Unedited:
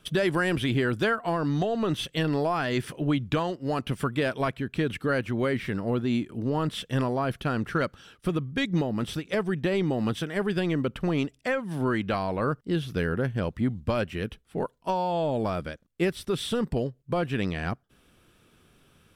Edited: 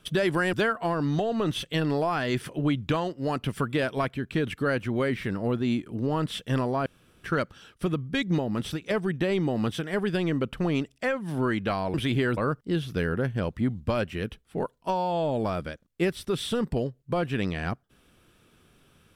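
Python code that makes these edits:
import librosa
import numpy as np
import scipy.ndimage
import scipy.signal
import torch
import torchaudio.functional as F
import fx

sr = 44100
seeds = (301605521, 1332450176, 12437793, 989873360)

y = fx.edit(x, sr, fx.move(start_s=0.53, length_s=0.43, to_s=12.37),
    fx.room_tone_fill(start_s=7.29, length_s=0.38), tone=tone)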